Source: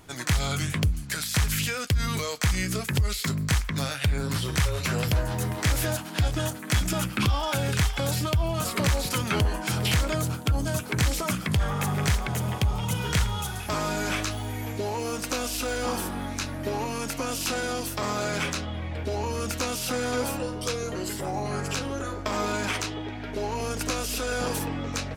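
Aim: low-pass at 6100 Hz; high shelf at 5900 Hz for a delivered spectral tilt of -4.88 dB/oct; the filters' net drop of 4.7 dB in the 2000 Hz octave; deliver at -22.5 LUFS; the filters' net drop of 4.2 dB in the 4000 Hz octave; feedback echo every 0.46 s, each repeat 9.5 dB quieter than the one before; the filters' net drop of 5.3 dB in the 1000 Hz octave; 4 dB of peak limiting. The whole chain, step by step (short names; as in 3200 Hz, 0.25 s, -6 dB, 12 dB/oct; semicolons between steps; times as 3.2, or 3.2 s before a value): LPF 6100 Hz; bell 1000 Hz -6 dB; bell 2000 Hz -3.5 dB; bell 4000 Hz -6 dB; high shelf 5900 Hz +7.5 dB; limiter -20 dBFS; feedback echo 0.46 s, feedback 33%, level -9.5 dB; gain +7.5 dB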